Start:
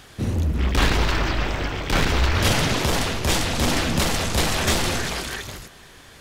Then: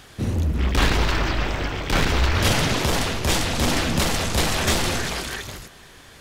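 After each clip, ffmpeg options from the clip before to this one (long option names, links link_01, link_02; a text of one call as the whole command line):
ffmpeg -i in.wav -af anull out.wav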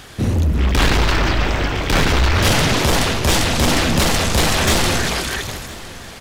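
ffmpeg -i in.wav -af "acontrast=87,asoftclip=type=tanh:threshold=-8dB,aecho=1:1:1010|2020|3030:0.112|0.0482|0.0207" out.wav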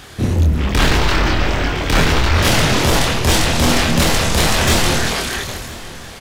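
ffmpeg -i in.wav -filter_complex "[0:a]asplit=2[link_01][link_02];[link_02]adelay=25,volume=-4.5dB[link_03];[link_01][link_03]amix=inputs=2:normalize=0" out.wav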